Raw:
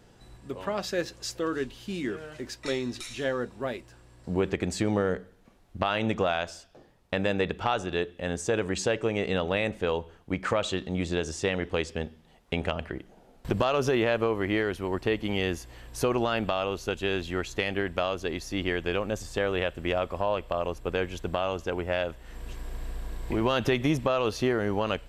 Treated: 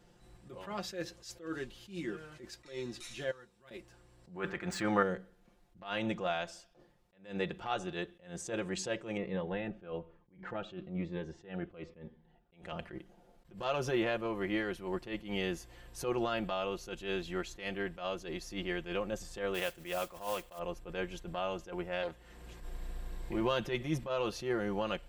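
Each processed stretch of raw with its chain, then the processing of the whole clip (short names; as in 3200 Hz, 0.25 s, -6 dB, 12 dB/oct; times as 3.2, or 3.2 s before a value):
3.31–3.71 passive tone stack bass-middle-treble 5-5-5 + de-hum 47.44 Hz, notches 24
4.36–5.03 median filter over 3 samples + bell 1400 Hz +15 dB 1.5 oct
9.17–12.53 LPF 1900 Hz + cascading phaser falling 1.1 Hz
19.54–20.59 tilt +1.5 dB/oct + modulation noise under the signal 13 dB
22.02–22.61 HPF 46 Hz 24 dB/oct + Doppler distortion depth 0.36 ms
whole clip: comb 5.7 ms, depth 62%; attack slew limiter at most 150 dB/s; gain -8 dB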